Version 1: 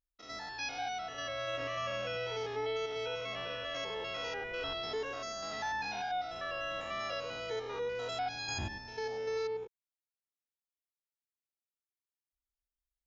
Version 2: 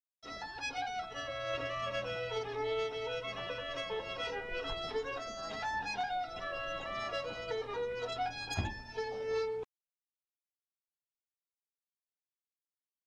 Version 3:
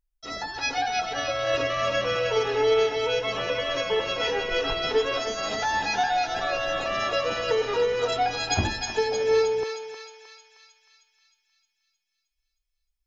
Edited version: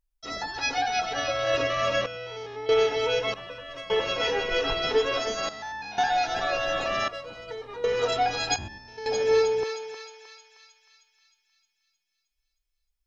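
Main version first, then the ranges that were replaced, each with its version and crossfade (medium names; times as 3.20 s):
3
2.06–2.69 s: from 1
3.34–3.90 s: from 2
5.49–5.98 s: from 1
7.08–7.84 s: from 2
8.56–9.06 s: from 1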